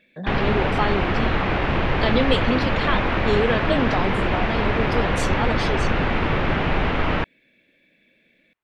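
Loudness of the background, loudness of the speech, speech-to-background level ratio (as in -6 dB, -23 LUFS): -22.5 LUFS, -26.0 LUFS, -3.5 dB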